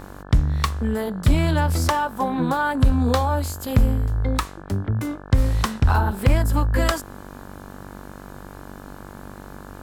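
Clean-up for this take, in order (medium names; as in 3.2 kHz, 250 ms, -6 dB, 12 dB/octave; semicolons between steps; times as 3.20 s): de-hum 48.3 Hz, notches 36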